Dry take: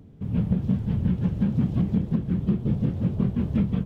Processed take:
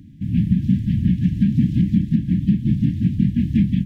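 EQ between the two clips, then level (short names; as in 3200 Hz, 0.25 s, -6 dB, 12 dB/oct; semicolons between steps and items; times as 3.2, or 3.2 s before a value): brick-wall FIR band-stop 330–1600 Hz; low shelf 110 Hz -6 dB; bell 1700 Hz -2.5 dB 0.54 oct; +8.0 dB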